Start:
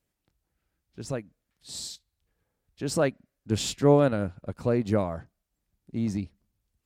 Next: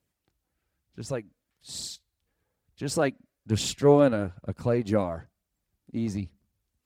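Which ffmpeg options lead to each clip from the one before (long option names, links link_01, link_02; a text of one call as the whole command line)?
ffmpeg -i in.wav -af "highpass=55,aphaser=in_gain=1:out_gain=1:delay=4.1:decay=0.35:speed=1.1:type=triangular" out.wav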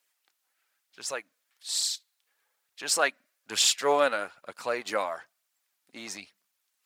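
ffmpeg -i in.wav -af "highpass=1100,volume=8.5dB" out.wav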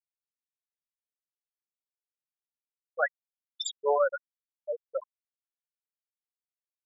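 ffmpeg -i in.wav -af "afftfilt=real='re*gte(hypot(re,im),0.282)':imag='im*gte(hypot(re,im),0.282)':win_size=1024:overlap=0.75" out.wav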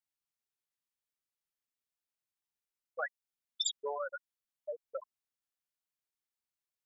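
ffmpeg -i in.wav -filter_complex "[0:a]equalizer=frequency=490:width_type=o:width=0.77:gain=-4.5,acrossover=split=2700[link_01][link_02];[link_01]acompressor=threshold=-38dB:ratio=4[link_03];[link_03][link_02]amix=inputs=2:normalize=0,volume=1dB" out.wav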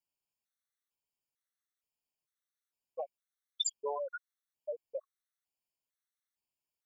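ffmpeg -i in.wav -af "afftfilt=real='re*gt(sin(2*PI*1.1*pts/sr)*(1-2*mod(floor(b*sr/1024/1100),2)),0)':imag='im*gt(sin(2*PI*1.1*pts/sr)*(1-2*mod(floor(b*sr/1024/1100),2)),0)':win_size=1024:overlap=0.75,volume=1.5dB" out.wav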